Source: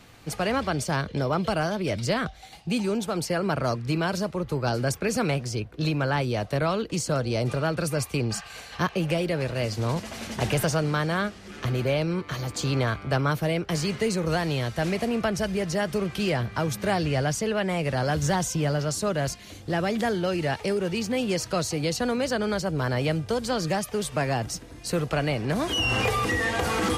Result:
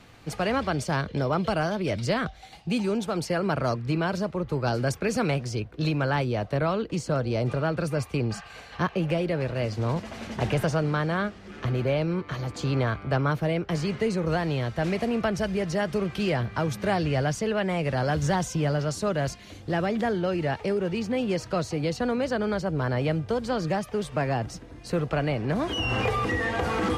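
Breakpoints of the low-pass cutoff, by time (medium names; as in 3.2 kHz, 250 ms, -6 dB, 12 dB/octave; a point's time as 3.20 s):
low-pass 6 dB/octave
4.9 kHz
from 3.74 s 2.8 kHz
from 4.53 s 5 kHz
from 6.24 s 2.3 kHz
from 14.84 s 3.8 kHz
from 19.86 s 2.1 kHz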